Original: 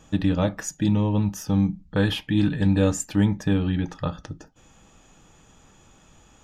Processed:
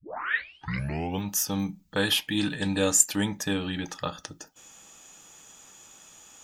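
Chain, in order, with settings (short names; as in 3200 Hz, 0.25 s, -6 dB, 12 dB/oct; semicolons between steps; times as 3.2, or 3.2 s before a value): tape start at the beginning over 1.28 s; RIAA curve recording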